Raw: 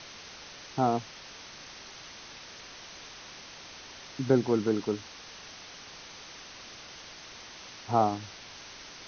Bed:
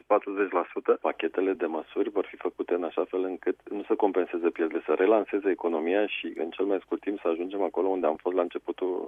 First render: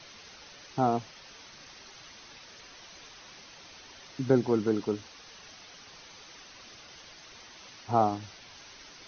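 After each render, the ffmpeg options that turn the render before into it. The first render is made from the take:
-af "afftdn=nr=7:nf=-47"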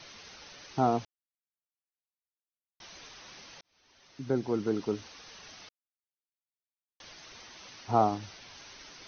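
-filter_complex "[0:a]asplit=6[a][b][c][d][e][f];[a]atrim=end=1.05,asetpts=PTS-STARTPTS,afade=t=out:st=1.046:d=0.004:c=hsin[g];[b]atrim=start=1.05:end=2.8,asetpts=PTS-STARTPTS,volume=0[h];[c]atrim=start=2.8:end=3.61,asetpts=PTS-STARTPTS,afade=t=in:d=0.004:c=hsin,afade=t=out:st=0.806:d=0.004:c=hsin[i];[d]atrim=start=3.61:end=5.69,asetpts=PTS-STARTPTS,afade=t=in:d=1.47,afade=t=out:st=2.076:d=0.004:c=hsin[j];[e]atrim=start=5.69:end=7,asetpts=PTS-STARTPTS,volume=0[k];[f]atrim=start=7,asetpts=PTS-STARTPTS,afade=t=in:d=0.004:c=hsin[l];[g][h][i][j][k][l]concat=n=6:v=0:a=1"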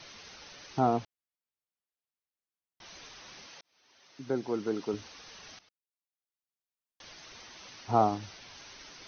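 -filter_complex "[0:a]asettb=1/sr,asplit=3[a][b][c];[a]atrim=end=0.794[d];[b]atrim=start=0.79:end=2.86,asetpts=PTS-STARTPTS,afade=t=in:d=0.004:c=qsin,afade=t=out:st=2.066:d=0.004:c=qsin,highshelf=f=5.3k:g=-7[e];[c]atrim=start=2.856[f];[d][e]acrossfade=d=0.004:c1=hsin:c2=qsin[g];[g][f]acrossfade=d=0.004:c1=qsin:c2=hsin,asettb=1/sr,asplit=3[h][i][j];[h]atrim=end=3.474[k];[i]atrim=start=3.47:end=4.94,asetpts=PTS-STARTPTS,afade=t=in:d=0.004:c=qsin,afade=t=out:st=1.466:d=0.004:c=qsin,highpass=f=270:p=1[l];[j]atrim=start=4.936[m];[k][l]acrossfade=d=0.004:c1=hsin:c2=qsin[n];[n][m]acrossfade=d=0.004:c1=qsin:c2=hsin,asplit=2[o][p];[o]atrim=end=5.59,asetpts=PTS-STARTPTS,afade=t=out:st=5.586:d=0.004:c=hsin:silence=0.158489[q];[p]atrim=start=5.59,asetpts=PTS-STARTPTS,afade=t=in:d=1.52:silence=0.158489[r];[q][r]concat=n=2:v=0:a=1"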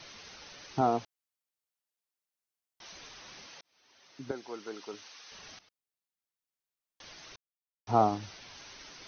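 -filter_complex "[0:a]asettb=1/sr,asplit=3[a][b][c];[a]atrim=end=0.814[d];[b]atrim=start=0.81:end=2.92,asetpts=PTS-STARTPTS,afade=t=in:d=0.004:c=qsin,afade=t=out:st=2.106:d=0.004:c=qsin,bass=f=250:g=-6,treble=f=4k:g=3[e];[c]atrim=start=2.916[f];[d][e]acrossfade=d=0.004:c1=hsin:c2=qsin[g];[g][f]acrossfade=d=0.004:c1=qsin:c2=hsin,asettb=1/sr,asplit=3[h][i][j];[h]atrim=end=4.314[k];[i]atrim=start=4.31:end=5.32,asetpts=PTS-STARTPTS,afade=t=in:d=0.004:c=qsin,afade=t=out:st=1.006:d=0.004:c=qsin,highpass=f=1.2k:p=1[l];[j]atrim=start=5.316[m];[k][l]acrossfade=d=0.004:c1=hsin:c2=qsin[n];[n][m]acrossfade=d=0.004:c1=qsin:c2=hsin,asplit=3[o][p][q];[o]atrim=end=7.36,asetpts=PTS-STARTPTS,afade=t=out:st=7.356:d=0.004:c=hsin[r];[p]atrim=start=7.36:end=7.87,asetpts=PTS-STARTPTS,volume=0[s];[q]atrim=start=7.87,asetpts=PTS-STARTPTS,afade=t=in:d=0.004:c=hsin[t];[r][s][t]concat=n=3:v=0:a=1"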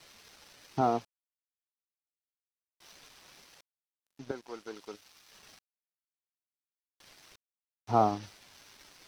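-af "aeval=exprs='sgn(val(0))*max(abs(val(0))-0.00266,0)':c=same"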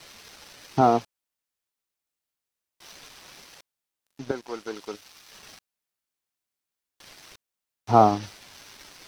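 -af "volume=8.5dB"

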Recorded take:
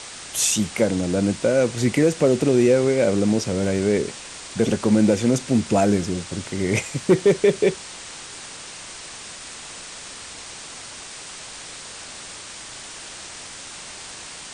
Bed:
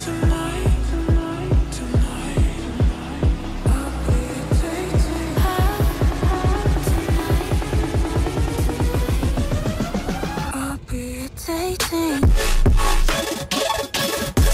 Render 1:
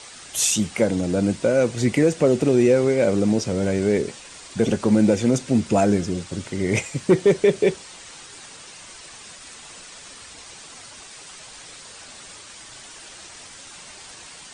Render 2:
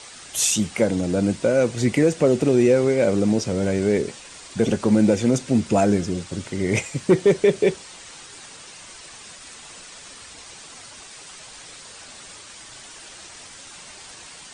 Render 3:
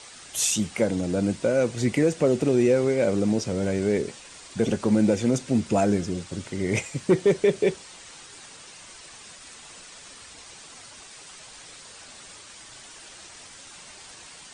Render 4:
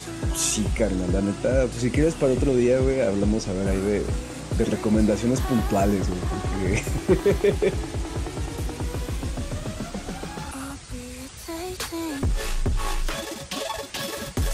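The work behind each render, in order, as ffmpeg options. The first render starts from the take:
-af "afftdn=nr=7:nf=-38"
-af anull
-af "volume=-3.5dB"
-filter_complex "[1:a]volume=-9dB[a];[0:a][a]amix=inputs=2:normalize=0"

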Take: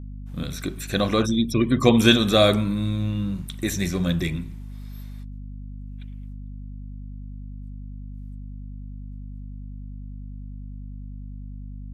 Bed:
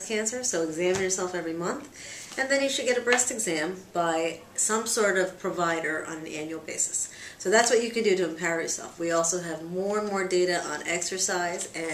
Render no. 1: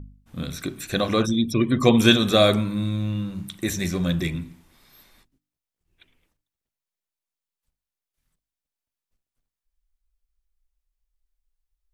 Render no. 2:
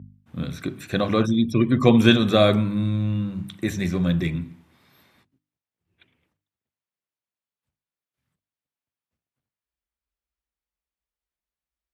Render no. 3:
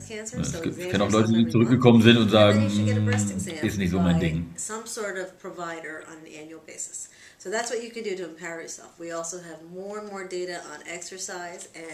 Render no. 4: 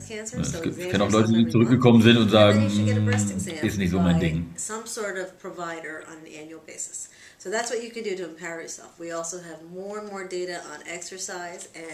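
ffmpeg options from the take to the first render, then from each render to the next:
-af "bandreject=f=50:t=h:w=4,bandreject=f=100:t=h:w=4,bandreject=f=150:t=h:w=4,bandreject=f=200:t=h:w=4,bandreject=f=250:t=h:w=4,bandreject=f=300:t=h:w=4"
-af "highpass=f=80:w=0.5412,highpass=f=80:w=1.3066,bass=f=250:g=3,treble=f=4k:g=-10"
-filter_complex "[1:a]volume=-7.5dB[a];[0:a][a]amix=inputs=2:normalize=0"
-af "volume=1dB,alimiter=limit=-3dB:level=0:latency=1"

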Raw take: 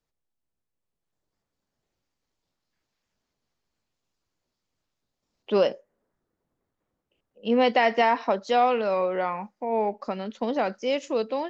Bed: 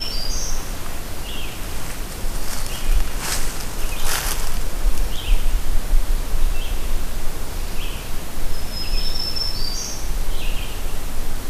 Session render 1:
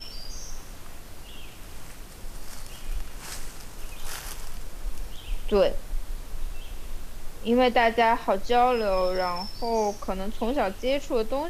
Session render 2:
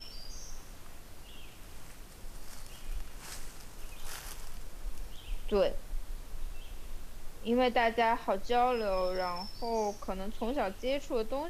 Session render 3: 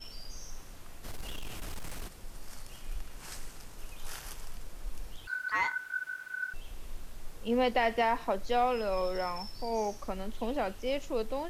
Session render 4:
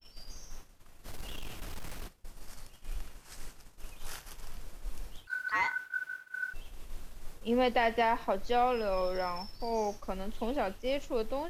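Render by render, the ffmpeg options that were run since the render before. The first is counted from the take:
-filter_complex "[1:a]volume=-14dB[a];[0:a][a]amix=inputs=2:normalize=0"
-af "volume=-7dB"
-filter_complex "[0:a]asplit=3[a][b][c];[a]afade=t=out:st=1.03:d=0.02[d];[b]aeval=exprs='0.0224*sin(PI/2*2.24*val(0)/0.0224)':c=same,afade=t=in:st=1.03:d=0.02,afade=t=out:st=2.07:d=0.02[e];[c]afade=t=in:st=2.07:d=0.02[f];[d][e][f]amix=inputs=3:normalize=0,asettb=1/sr,asplit=3[g][h][i];[g]atrim=end=5.274[j];[h]atrim=start=5.27:end=6.54,asetpts=PTS-STARTPTS,afade=t=in:d=0.004:c=qsin,afade=t=out:st=1.266:d=0.004:c=qsin,aeval=exprs='val(0)*sin(2*PI*1500*n/s)':c=same[k];[i]atrim=start=6.536[l];[j][k]acrossfade=d=0.004:c1=hsin:c2=qsin[m];[m][l]acrossfade=d=0.004:c1=qsin:c2=hsin"
-af "agate=range=-33dB:threshold=-36dB:ratio=3:detection=peak,adynamicequalizer=threshold=0.00112:dfrequency=8600:dqfactor=1.1:tfrequency=8600:tqfactor=1.1:attack=5:release=100:ratio=0.375:range=2:mode=cutabove:tftype=bell"

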